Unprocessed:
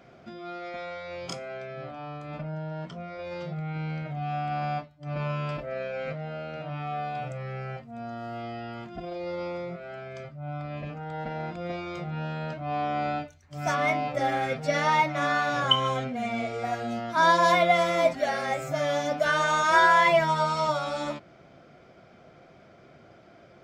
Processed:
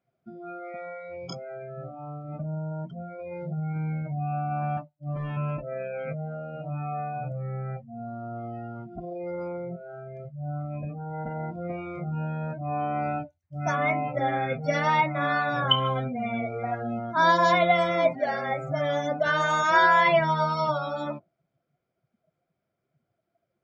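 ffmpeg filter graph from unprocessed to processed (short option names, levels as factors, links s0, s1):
-filter_complex "[0:a]asettb=1/sr,asplit=3[s0][s1][s2];[s0]atrim=end=4.774[s3];[s1]atrim=start=4.77:end=5.37,asetpts=PTS-STARTPTS,afade=t=in:d=0.004:c=qsin,afade=t=out:st=0.596:d=0.004:c=qsin,equalizer=f=76:w=3.5:g=-10.5,aeval=exprs='0.0398*(abs(mod(val(0)/0.0398+3,4)-2)-1)':c=same[s4];[s2]atrim=start=5.366[s5];[s3][s4]acrossfade=d=0.004:c1=hsin:c2=qsin[s6];[s6][s5]acrossfade=d=0.004:c1=qsin:c2=hsin,afftdn=nr=29:nf=-35,equalizer=f=120:t=o:w=1.2:g=4.5"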